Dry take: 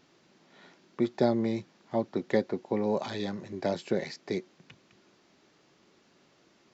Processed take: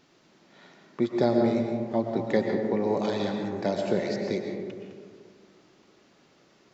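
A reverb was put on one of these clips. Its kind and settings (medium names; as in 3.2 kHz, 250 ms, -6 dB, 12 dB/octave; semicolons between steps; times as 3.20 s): algorithmic reverb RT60 2 s, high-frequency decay 0.3×, pre-delay 80 ms, DRR 2.5 dB; trim +1.5 dB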